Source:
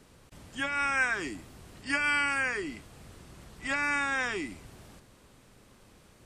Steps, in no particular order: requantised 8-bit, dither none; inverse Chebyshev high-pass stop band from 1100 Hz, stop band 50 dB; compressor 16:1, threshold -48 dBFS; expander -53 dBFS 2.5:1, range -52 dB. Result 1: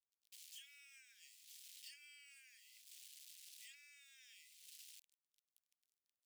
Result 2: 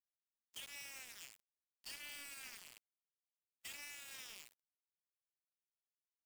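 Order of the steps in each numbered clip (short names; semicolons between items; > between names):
requantised > compressor > expander > inverse Chebyshev high-pass; inverse Chebyshev high-pass > compressor > requantised > expander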